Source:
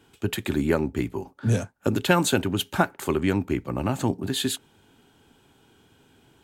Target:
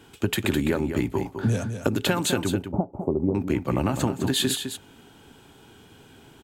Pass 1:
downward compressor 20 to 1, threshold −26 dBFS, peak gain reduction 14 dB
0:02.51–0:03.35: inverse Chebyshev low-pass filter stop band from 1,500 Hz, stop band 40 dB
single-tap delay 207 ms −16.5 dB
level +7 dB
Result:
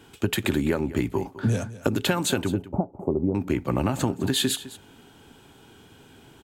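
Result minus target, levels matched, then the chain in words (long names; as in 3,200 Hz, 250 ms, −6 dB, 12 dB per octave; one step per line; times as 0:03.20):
echo-to-direct −8 dB
downward compressor 20 to 1, threshold −26 dBFS, peak gain reduction 14 dB
0:02.51–0:03.35: inverse Chebyshev low-pass filter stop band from 1,500 Hz, stop band 40 dB
single-tap delay 207 ms −8.5 dB
level +7 dB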